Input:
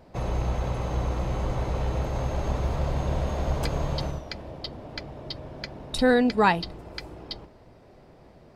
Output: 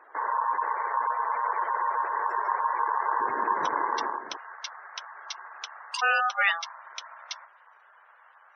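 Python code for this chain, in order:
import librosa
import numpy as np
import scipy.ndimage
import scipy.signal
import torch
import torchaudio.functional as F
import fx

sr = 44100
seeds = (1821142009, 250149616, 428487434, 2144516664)

y = scipy.signal.sosfilt(scipy.signal.butter(2, 8300.0, 'lowpass', fs=sr, output='sos'), x)
y = y * np.sin(2.0 * np.pi * 1000.0 * np.arange(len(y)) / sr)
y = fx.highpass(y, sr, hz=fx.steps((0.0, 480.0), (3.21, 200.0), (4.37, 1100.0)), slope=12)
y = fx.spec_gate(y, sr, threshold_db=-20, keep='strong')
y = y * librosa.db_to_amplitude(2.5)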